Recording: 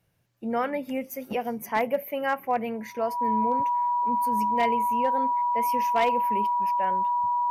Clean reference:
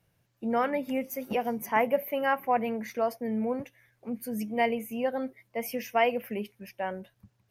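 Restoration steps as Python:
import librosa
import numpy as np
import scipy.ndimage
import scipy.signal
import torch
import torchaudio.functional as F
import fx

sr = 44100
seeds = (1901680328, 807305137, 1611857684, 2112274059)

y = fx.fix_declip(x, sr, threshold_db=-16.0)
y = fx.notch(y, sr, hz=970.0, q=30.0)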